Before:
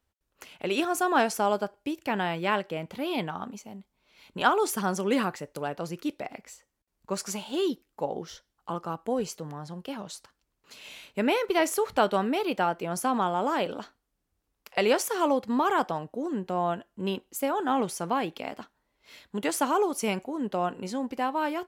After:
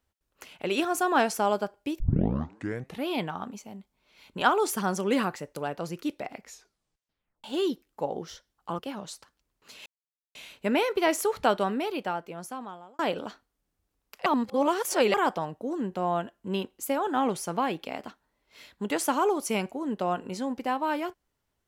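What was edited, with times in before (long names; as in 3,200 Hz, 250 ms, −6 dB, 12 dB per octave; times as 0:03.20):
0:02.00: tape start 1.04 s
0:06.43: tape stop 1.01 s
0:08.79–0:09.81: remove
0:10.88: splice in silence 0.49 s
0:11.95–0:13.52: fade out
0:14.79–0:15.67: reverse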